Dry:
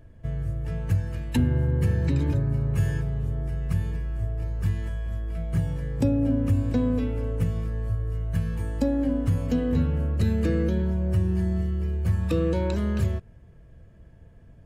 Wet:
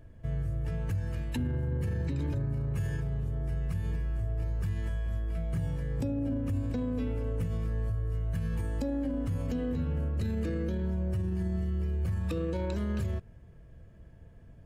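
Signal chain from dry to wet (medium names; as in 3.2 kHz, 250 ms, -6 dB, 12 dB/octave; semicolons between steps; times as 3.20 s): peak limiter -22.5 dBFS, peak gain reduction 9 dB; trim -2 dB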